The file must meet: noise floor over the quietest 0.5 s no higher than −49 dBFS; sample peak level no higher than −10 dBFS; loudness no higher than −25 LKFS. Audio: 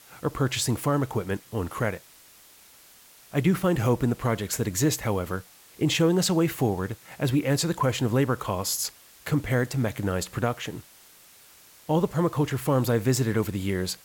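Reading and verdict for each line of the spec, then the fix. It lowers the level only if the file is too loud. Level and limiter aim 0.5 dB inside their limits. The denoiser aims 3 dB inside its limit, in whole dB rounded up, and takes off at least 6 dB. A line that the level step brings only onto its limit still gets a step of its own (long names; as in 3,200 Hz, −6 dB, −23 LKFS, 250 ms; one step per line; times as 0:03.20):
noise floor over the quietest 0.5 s −53 dBFS: in spec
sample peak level −11.5 dBFS: in spec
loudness −26.0 LKFS: in spec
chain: no processing needed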